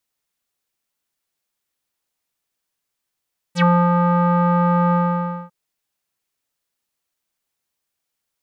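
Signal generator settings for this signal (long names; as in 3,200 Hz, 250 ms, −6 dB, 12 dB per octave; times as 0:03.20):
subtractive voice square F3 12 dB per octave, low-pass 1,100 Hz, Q 5.9, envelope 3.5 octaves, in 0.08 s, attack 73 ms, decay 0.27 s, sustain −3 dB, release 0.57 s, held 1.38 s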